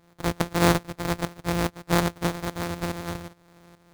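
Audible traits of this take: a buzz of ramps at a fixed pitch in blocks of 256 samples; tremolo saw up 2.4 Hz, depth 75%; aliases and images of a low sample rate 2900 Hz, jitter 20%

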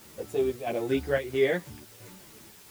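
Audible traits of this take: chopped level 1.5 Hz, depth 60%, duty 75%; a quantiser's noise floor 8-bit, dither triangular; a shimmering, thickened sound

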